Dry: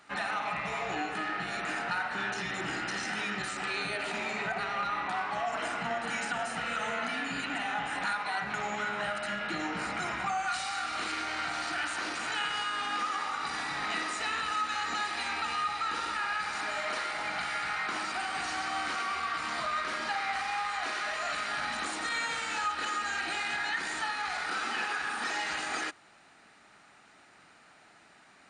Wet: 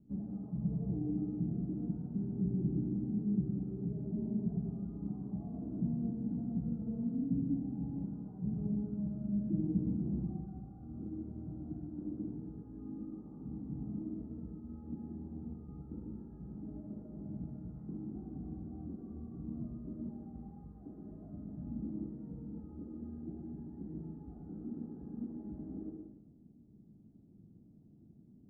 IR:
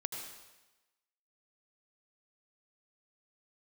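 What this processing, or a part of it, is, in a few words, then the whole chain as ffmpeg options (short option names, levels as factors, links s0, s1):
club heard from the street: -filter_complex "[0:a]alimiter=level_in=1.19:limit=0.0631:level=0:latency=1,volume=0.841,lowpass=f=240:w=0.5412,lowpass=f=240:w=1.3066[s0];[1:a]atrim=start_sample=2205[s1];[s0][s1]afir=irnorm=-1:irlink=0,volume=4.22"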